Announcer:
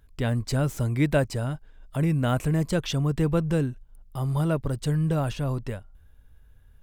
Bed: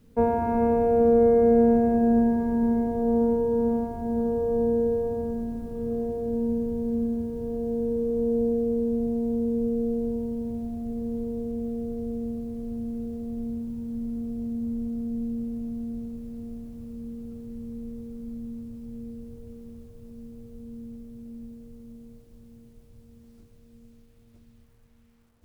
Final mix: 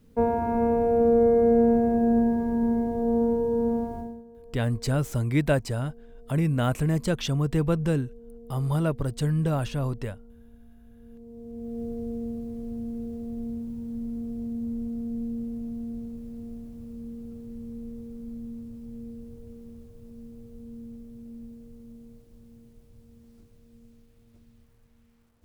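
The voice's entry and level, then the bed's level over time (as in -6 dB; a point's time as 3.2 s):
4.35 s, -0.5 dB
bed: 3.99 s -1 dB
4.25 s -23 dB
10.92 s -23 dB
11.82 s -1.5 dB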